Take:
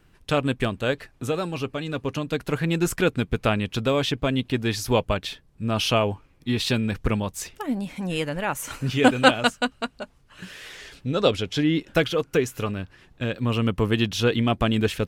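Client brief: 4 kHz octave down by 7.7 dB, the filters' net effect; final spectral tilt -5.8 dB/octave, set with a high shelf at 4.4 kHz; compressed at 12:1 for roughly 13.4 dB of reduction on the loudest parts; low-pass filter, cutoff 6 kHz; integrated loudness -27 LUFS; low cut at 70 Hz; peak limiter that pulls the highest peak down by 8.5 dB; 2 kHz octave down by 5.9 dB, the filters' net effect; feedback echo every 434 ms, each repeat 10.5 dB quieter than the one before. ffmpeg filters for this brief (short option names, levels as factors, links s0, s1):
-af "highpass=70,lowpass=6000,equalizer=f=2000:t=o:g=-6.5,equalizer=f=4000:t=o:g=-4.5,highshelf=f=4400:g=-5,acompressor=threshold=0.0501:ratio=12,alimiter=level_in=1.06:limit=0.0631:level=0:latency=1,volume=0.944,aecho=1:1:434|868|1302:0.299|0.0896|0.0269,volume=2.51"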